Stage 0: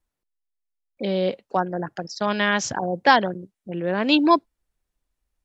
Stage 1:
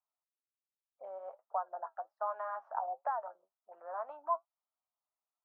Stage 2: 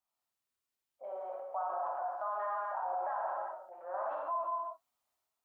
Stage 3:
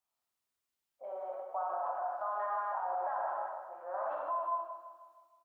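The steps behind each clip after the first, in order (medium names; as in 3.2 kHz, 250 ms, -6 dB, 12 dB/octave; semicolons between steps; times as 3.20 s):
flange 1.3 Hz, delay 6.5 ms, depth 4.2 ms, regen +53%; compression 6:1, threshold -26 dBFS, peak gain reduction 11 dB; Chebyshev band-pass 640–1300 Hz, order 3; trim -1 dB
gated-style reverb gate 420 ms falling, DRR -5 dB; peak limiter -28 dBFS, peak gain reduction 9.5 dB; transient shaper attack -1 dB, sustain +4 dB
feedback delay 157 ms, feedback 53%, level -9.5 dB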